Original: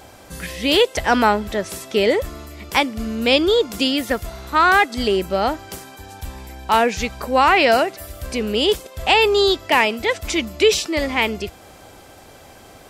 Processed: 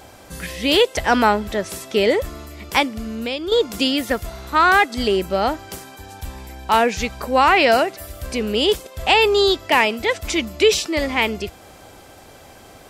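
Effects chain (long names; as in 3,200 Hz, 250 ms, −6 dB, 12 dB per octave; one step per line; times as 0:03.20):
0:02.87–0:03.52: downward compressor 3 to 1, threshold −26 dBFS, peak gain reduction 12 dB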